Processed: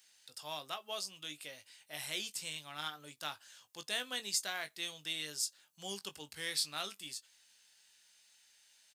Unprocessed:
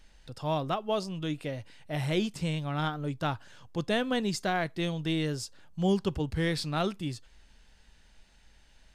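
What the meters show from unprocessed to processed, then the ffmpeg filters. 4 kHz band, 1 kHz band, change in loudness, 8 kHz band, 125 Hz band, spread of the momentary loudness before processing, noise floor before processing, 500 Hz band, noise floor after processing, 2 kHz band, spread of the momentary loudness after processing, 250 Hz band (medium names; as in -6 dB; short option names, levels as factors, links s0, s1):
-0.5 dB, -12.0 dB, -8.0 dB, +5.5 dB, -27.0 dB, 9 LU, -61 dBFS, -17.0 dB, -71 dBFS, -5.5 dB, 13 LU, -23.5 dB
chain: -filter_complex "[0:a]highpass=61,aderivative,asplit=2[s0][s1];[s1]adelay=20,volume=0.335[s2];[s0][s2]amix=inputs=2:normalize=0,volume=1.78"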